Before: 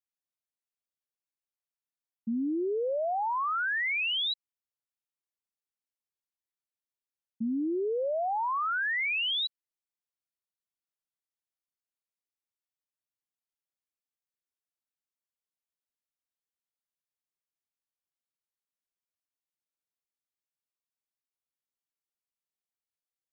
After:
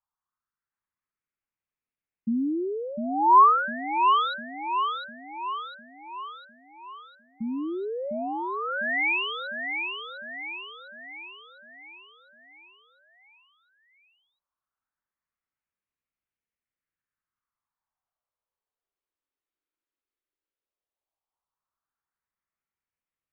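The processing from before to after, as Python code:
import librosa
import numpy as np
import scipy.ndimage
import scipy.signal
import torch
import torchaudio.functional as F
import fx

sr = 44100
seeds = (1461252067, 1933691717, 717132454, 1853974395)

p1 = fx.peak_eq(x, sr, hz=1100.0, db=11.0, octaves=1.4)
p2 = fx.phaser_stages(p1, sr, stages=4, low_hz=130.0, high_hz=1100.0, hz=0.14, feedback_pct=45)
p3 = fx.air_absorb(p2, sr, metres=470.0)
p4 = p3 + fx.echo_feedback(p3, sr, ms=703, feedback_pct=52, wet_db=-5.5, dry=0)
y = p4 * librosa.db_to_amplitude(5.5)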